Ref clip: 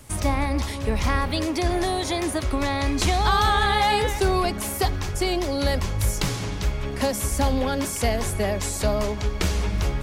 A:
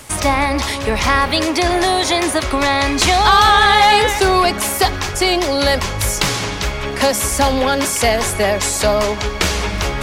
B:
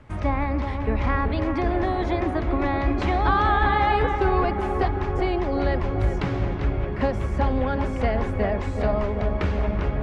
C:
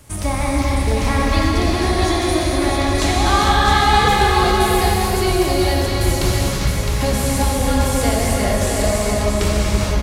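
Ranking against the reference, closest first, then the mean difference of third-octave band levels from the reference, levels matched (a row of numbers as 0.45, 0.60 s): A, C, B; 3.0, 5.0, 9.0 dB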